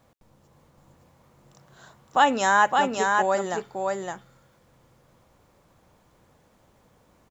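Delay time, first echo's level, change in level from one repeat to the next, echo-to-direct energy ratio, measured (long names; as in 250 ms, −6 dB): 564 ms, −3.5 dB, repeats not evenly spaced, −3.5 dB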